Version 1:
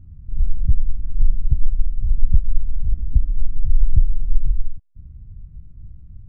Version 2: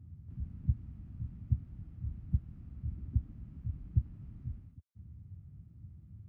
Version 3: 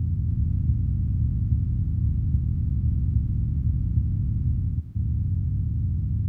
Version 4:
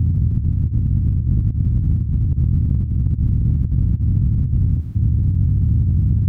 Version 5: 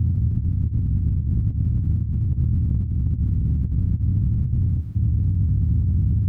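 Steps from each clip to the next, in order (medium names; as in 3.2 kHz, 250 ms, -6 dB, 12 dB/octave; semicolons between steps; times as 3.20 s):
high-pass 82 Hz 24 dB/octave; trim -4.5 dB
spectral levelling over time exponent 0.2; trim +3.5 dB
compressor with a negative ratio -25 dBFS, ratio -0.5; trim +9 dB
flange 0.44 Hz, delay 9.4 ms, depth 2.9 ms, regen -49%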